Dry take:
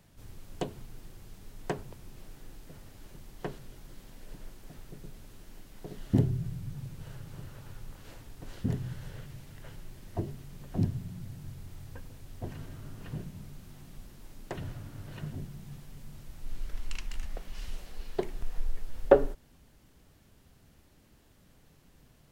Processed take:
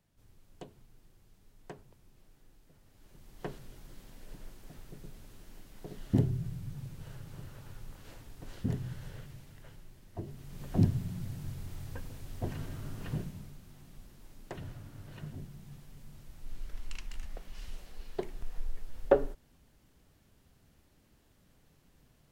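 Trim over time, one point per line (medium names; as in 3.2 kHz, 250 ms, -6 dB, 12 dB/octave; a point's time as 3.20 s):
2.80 s -13.5 dB
3.50 s -2 dB
9.14 s -2 dB
10.12 s -9 dB
10.64 s +3 dB
13.15 s +3 dB
13.61 s -4.5 dB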